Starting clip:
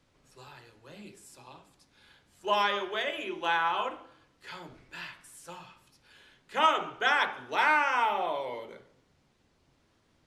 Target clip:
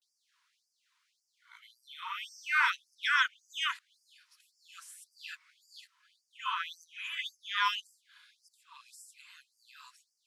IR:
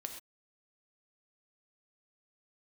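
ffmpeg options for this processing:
-af "areverse,afftfilt=real='re*gte(b*sr/1024,880*pow(4700/880,0.5+0.5*sin(2*PI*1.8*pts/sr)))':imag='im*gte(b*sr/1024,880*pow(4700/880,0.5+0.5*sin(2*PI*1.8*pts/sr)))':win_size=1024:overlap=0.75"

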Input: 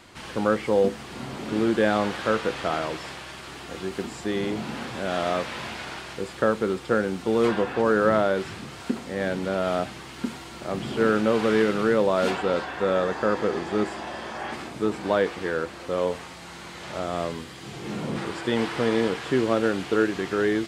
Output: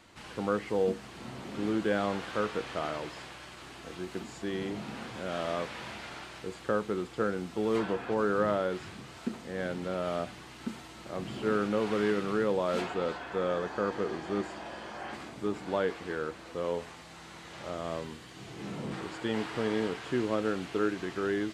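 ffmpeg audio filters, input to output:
-af "asetrate=42336,aresample=44100,volume=0.422"

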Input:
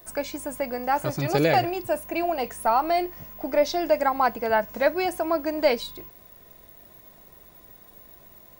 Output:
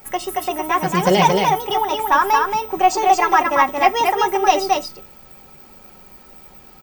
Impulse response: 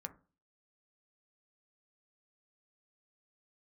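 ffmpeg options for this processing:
-filter_complex "[0:a]bandreject=f=530:w=15,aecho=1:1:6.9:0.46,asetrate=55566,aresample=44100,aecho=1:1:226:0.668,asplit=2[s0][s1];[1:a]atrim=start_sample=2205,asetrate=70560,aresample=44100[s2];[s1][s2]afir=irnorm=-1:irlink=0,volume=2.11[s3];[s0][s3]amix=inputs=2:normalize=0"

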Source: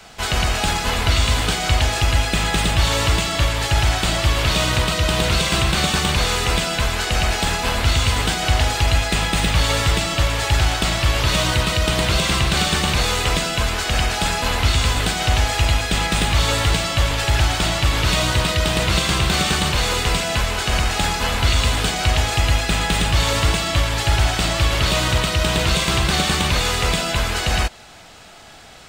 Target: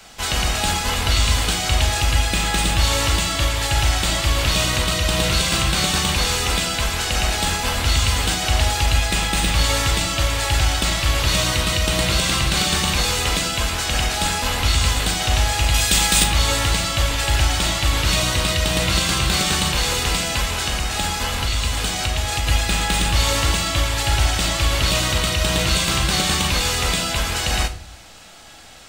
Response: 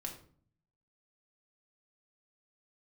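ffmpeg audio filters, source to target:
-filter_complex "[0:a]asettb=1/sr,asplit=3[s0][s1][s2];[s0]atrim=end=15.744[s3];[s1]atrim=start=15.74:end=16.24,asetpts=PTS-STARTPTS,afade=t=in:d=0.004:c=qsin,afade=t=out:st=0.496:d=0.004:c=qsin,highshelf=f=3800:g=10.5[s4];[s2]atrim=start=16.236[s5];[s3][s4]acrossfade=d=0.004:c1=hsin:c2=qsin[s6];[s6][s5]acrossfade=d=0.004:c1=qsin:c2=hsin,asettb=1/sr,asplit=3[s7][s8][s9];[s7]atrim=end=20.624[s10];[s8]atrim=start=20.62:end=22.47,asetpts=PTS-STARTPTS,afade=t=in:d=0.004:c=qsin,afade=t=out:st=1.846:d=0.004:c=qsin,acompressor=threshold=0.126:ratio=3[s11];[s9]atrim=start=22.466[s12];[s10][s11]acrossfade=d=0.004:c1=hsin:c2=qsin[s13];[s13][s12]acrossfade=d=0.004:c1=qsin:c2=hsin,asplit=2[s14][s15];[1:a]atrim=start_sample=2205,highshelf=f=3000:g=12[s16];[s15][s16]afir=irnorm=-1:irlink=0,volume=0.841[s17];[s14][s17]amix=inputs=2:normalize=0,volume=0.473"

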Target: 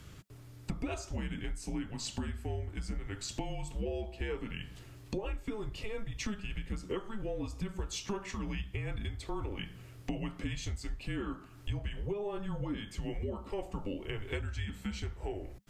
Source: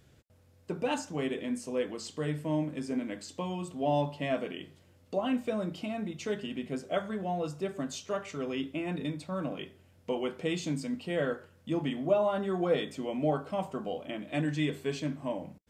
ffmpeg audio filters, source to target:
-af "acompressor=threshold=0.00631:ratio=12,afreqshift=-210,volume=3.35"

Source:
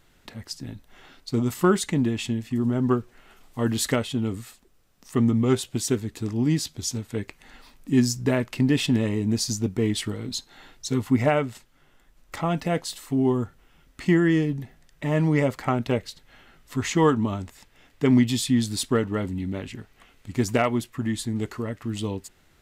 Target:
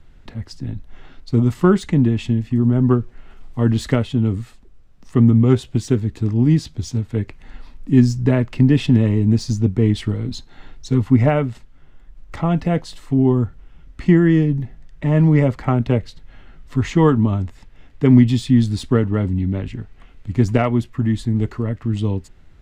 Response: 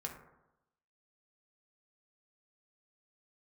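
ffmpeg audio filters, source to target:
-filter_complex "[0:a]aemphasis=mode=reproduction:type=bsi,acrossover=split=210|970|5600[s0][s1][s2][s3];[s3]asoftclip=type=tanh:threshold=0.0178[s4];[s0][s1][s2][s4]amix=inputs=4:normalize=0,volume=1.26"

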